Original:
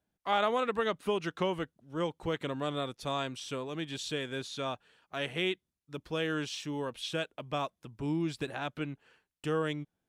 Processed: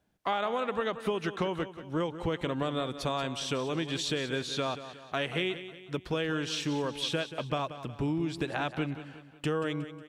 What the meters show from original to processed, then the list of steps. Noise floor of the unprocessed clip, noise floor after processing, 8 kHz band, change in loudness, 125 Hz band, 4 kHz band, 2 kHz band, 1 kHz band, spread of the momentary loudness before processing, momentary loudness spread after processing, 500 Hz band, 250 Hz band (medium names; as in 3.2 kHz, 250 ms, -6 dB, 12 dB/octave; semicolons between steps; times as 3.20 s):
under -85 dBFS, -52 dBFS, +4.5 dB, +2.0 dB, +4.0 dB, +3.0 dB, +2.0 dB, +1.0 dB, 9 LU, 6 LU, +1.5 dB, +3.0 dB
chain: treble shelf 7.1 kHz -6.5 dB; compression, threshold -37 dBFS, peak gain reduction 12.5 dB; on a send: feedback delay 182 ms, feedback 46%, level -12.5 dB; on the sum: trim +9 dB